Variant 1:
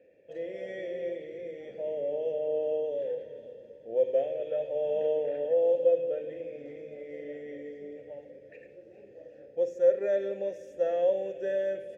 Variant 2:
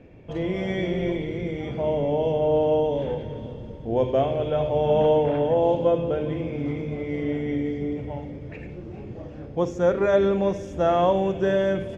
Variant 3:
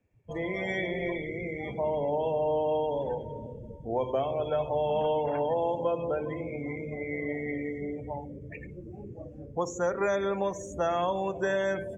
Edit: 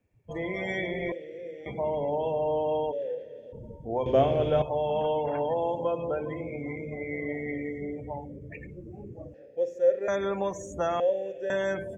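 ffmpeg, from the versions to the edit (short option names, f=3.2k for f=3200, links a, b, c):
-filter_complex "[0:a]asplit=4[a][b][c][d];[2:a]asplit=6[e][f][g][h][i][j];[e]atrim=end=1.122[k];[a]atrim=start=1.118:end=1.662[l];[f]atrim=start=1.658:end=2.93[m];[b]atrim=start=2.91:end=3.54[n];[g]atrim=start=3.52:end=4.062[o];[1:a]atrim=start=4.058:end=4.622[p];[h]atrim=start=4.618:end=9.342[q];[c]atrim=start=9.338:end=10.082[r];[i]atrim=start=10.078:end=11.002[s];[d]atrim=start=10.998:end=11.502[t];[j]atrim=start=11.498[u];[k][l]acrossfade=d=0.004:c1=hsin:c2=hsin[v];[v][m]acrossfade=d=0.004:c1=hsin:c2=hsin[w];[w][n]acrossfade=d=0.02:c1=tri:c2=tri[x];[x][o]acrossfade=d=0.02:c1=tri:c2=tri[y];[y][p]acrossfade=d=0.004:c1=hsin:c2=hsin[z];[z][q]acrossfade=d=0.004:c1=hsin:c2=hsin[aa];[aa][r]acrossfade=d=0.004:c1=hsin:c2=hsin[ab];[ab][s]acrossfade=d=0.004:c1=hsin:c2=hsin[ac];[ac][t]acrossfade=d=0.004:c1=hsin:c2=hsin[ad];[ad][u]acrossfade=d=0.004:c1=hsin:c2=hsin"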